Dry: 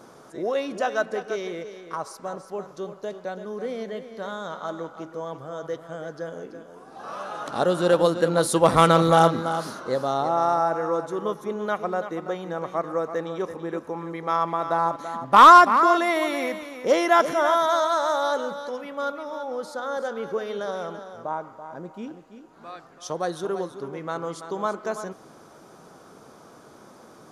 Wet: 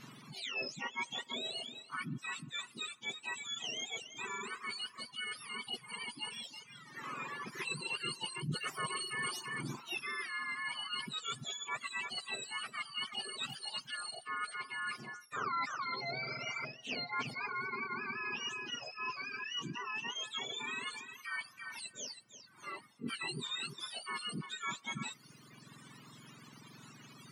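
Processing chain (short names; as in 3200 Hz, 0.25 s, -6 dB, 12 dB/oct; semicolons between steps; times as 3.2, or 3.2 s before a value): spectrum mirrored in octaves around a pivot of 1200 Hz; spectral repair 16.29–16.62, 820–2600 Hz before; reverse; compressor 5:1, threshold -35 dBFS, peak gain reduction 23 dB; reverse; reverb removal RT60 1.5 s; gain -1.5 dB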